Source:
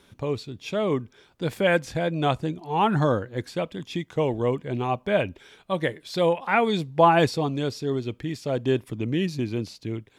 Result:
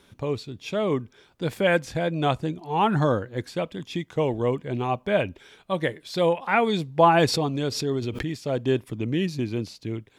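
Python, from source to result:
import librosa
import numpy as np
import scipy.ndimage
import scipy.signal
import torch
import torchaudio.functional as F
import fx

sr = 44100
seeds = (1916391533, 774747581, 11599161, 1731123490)

y = fx.pre_swell(x, sr, db_per_s=55.0, at=(7.11, 8.31))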